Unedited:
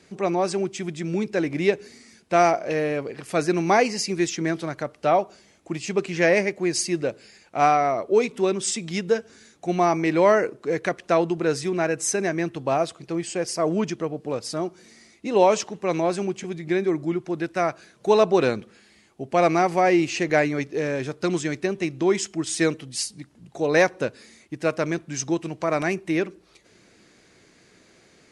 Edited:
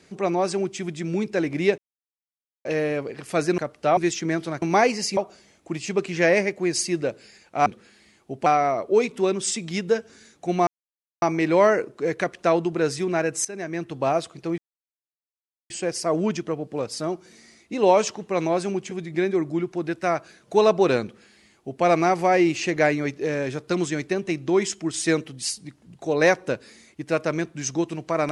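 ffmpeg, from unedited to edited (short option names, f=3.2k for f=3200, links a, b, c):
-filter_complex "[0:a]asplit=12[a][b][c][d][e][f][g][h][i][j][k][l];[a]atrim=end=1.78,asetpts=PTS-STARTPTS,afade=t=out:st=1.776:d=0.004:c=hsin[m];[b]atrim=start=1.78:end=2.65,asetpts=PTS-STARTPTS,volume=0[n];[c]atrim=start=2.65:end=3.582,asetpts=PTS-STARTPTS,afade=t=in:d=0.004:c=hsin[o];[d]atrim=start=4.778:end=5.172[p];[e]atrim=start=4.128:end=4.782[q];[f]atrim=start=3.578:end=4.132[r];[g]atrim=start=5.168:end=7.662[s];[h]atrim=start=18.558:end=19.362[t];[i]atrim=start=7.658:end=9.87,asetpts=PTS-STARTPTS,afade=t=out:st=2.208:d=0.004:c=hsin,apad=pad_dur=0.55[u];[j]atrim=start=9.87:end=12.1,asetpts=PTS-STARTPTS,afade=t=in:d=0.004:c=hsin,afade=t=out:st=2.226:d=0.004:c=hsin:silence=0.177828[v];[k]atrim=start=12.1:end=13.23,asetpts=PTS-STARTPTS,afade=t=in:d=0.56:silence=0.177828,afade=t=out:st=1.126:d=0.004:c=hsin,apad=pad_dur=1.12[w];[l]atrim=start=13.23,asetpts=PTS-STARTPTS,afade=t=in:d=0.004:c=hsin[x];[m][n][o]concat=n=3:v=0:a=1[y];[y][p]acrossfade=d=0.004:c1=hsin:c2=hsin[z];[z][q]acrossfade=d=0.004:c1=hsin:c2=hsin[aa];[aa][r]acrossfade=d=0.004:c1=hsin:c2=hsin[ab];[ab][s]acrossfade=d=0.004:c1=hsin:c2=hsin[ac];[ac][t]acrossfade=d=0.004:c1=hsin:c2=hsin[ad];[u][v][w][x]concat=n=4:v=0:a=1[ae];[ad][ae]acrossfade=d=0.004:c1=hsin:c2=hsin"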